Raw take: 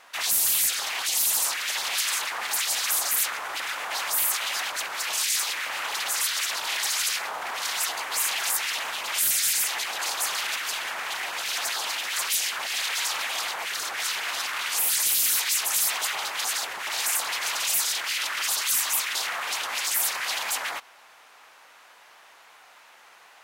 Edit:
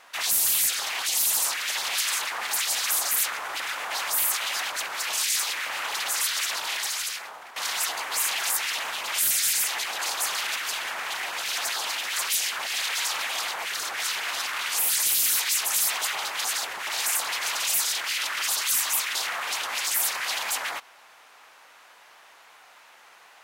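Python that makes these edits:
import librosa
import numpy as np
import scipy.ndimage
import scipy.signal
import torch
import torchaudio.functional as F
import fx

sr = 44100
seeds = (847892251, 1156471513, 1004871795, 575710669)

y = fx.edit(x, sr, fx.fade_out_to(start_s=6.56, length_s=1.0, floor_db=-15.0), tone=tone)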